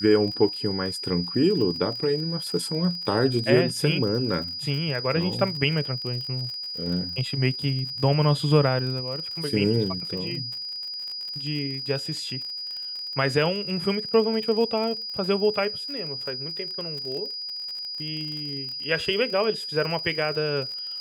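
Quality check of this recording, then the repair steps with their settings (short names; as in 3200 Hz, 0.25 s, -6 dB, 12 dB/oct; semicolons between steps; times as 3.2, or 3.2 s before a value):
crackle 42/s -32 dBFS
tone 4900 Hz -31 dBFS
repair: de-click; notch 4900 Hz, Q 30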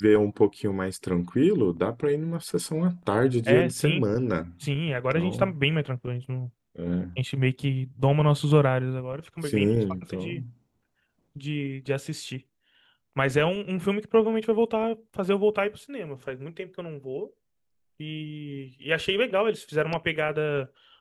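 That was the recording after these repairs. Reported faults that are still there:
none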